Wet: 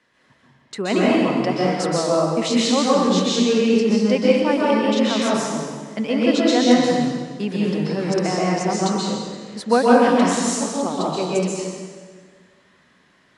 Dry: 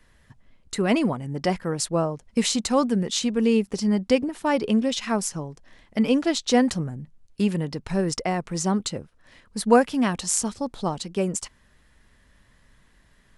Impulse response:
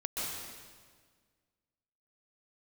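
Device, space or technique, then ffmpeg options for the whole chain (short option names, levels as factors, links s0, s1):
supermarket ceiling speaker: -filter_complex "[0:a]highpass=220,lowpass=6000[s0];[1:a]atrim=start_sample=2205[s1];[s0][s1]afir=irnorm=-1:irlink=0,volume=1.26"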